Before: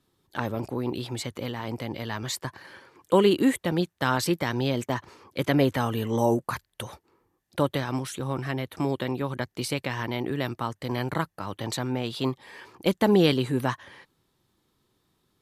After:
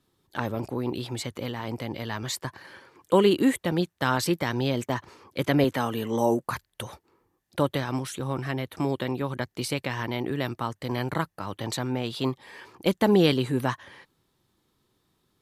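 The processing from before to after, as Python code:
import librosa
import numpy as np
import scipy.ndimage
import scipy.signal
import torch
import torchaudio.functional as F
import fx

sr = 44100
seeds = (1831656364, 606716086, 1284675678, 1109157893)

y = fx.highpass(x, sr, hz=150.0, slope=12, at=(5.64, 6.44))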